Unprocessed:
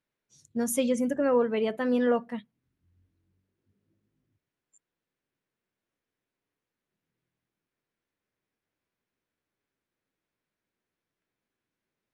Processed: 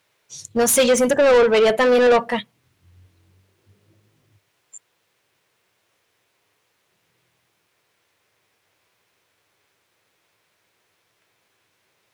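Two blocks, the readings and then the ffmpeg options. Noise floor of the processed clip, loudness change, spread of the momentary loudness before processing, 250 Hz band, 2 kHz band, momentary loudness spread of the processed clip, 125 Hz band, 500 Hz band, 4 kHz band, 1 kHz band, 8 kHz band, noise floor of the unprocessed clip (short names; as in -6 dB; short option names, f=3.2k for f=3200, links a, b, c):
-69 dBFS, +10.5 dB, 12 LU, +3.5 dB, +16.0 dB, 12 LU, n/a, +12.0 dB, +17.5 dB, +13.0 dB, +15.0 dB, under -85 dBFS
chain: -filter_complex "[0:a]equalizer=f=100:t=o:w=0.67:g=11,equalizer=f=250:t=o:w=0.67:g=-8,equalizer=f=1.6k:t=o:w=0.67:g=-4,asplit=2[a][b];[b]highpass=f=720:p=1,volume=22dB,asoftclip=type=tanh:threshold=-15.5dB[c];[a][c]amix=inputs=2:normalize=0,lowpass=f=7.9k:p=1,volume=-6dB,volume=8dB"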